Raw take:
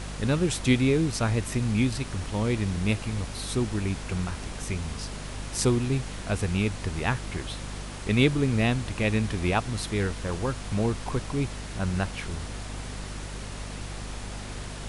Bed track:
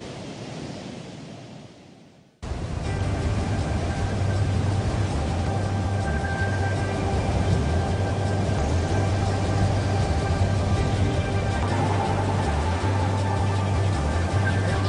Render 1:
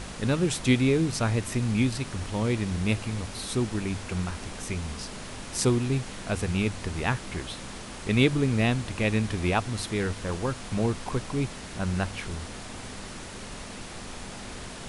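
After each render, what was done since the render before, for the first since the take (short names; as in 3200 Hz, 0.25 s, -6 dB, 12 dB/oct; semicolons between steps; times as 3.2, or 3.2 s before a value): de-hum 50 Hz, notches 3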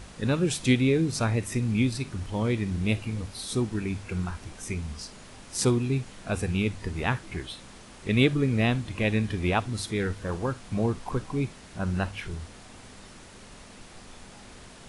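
noise print and reduce 8 dB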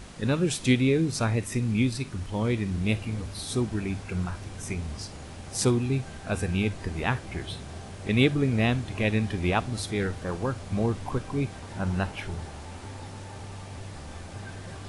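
add bed track -18 dB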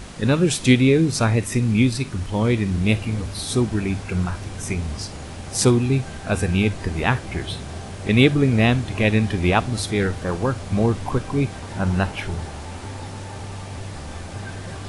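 gain +7 dB; limiter -2 dBFS, peak gain reduction 1 dB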